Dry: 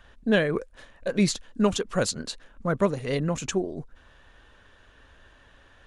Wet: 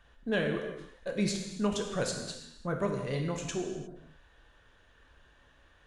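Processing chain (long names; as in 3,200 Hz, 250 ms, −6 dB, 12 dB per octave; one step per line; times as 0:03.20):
reverb whose tail is shaped and stops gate 380 ms falling, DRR 2 dB
level −8.5 dB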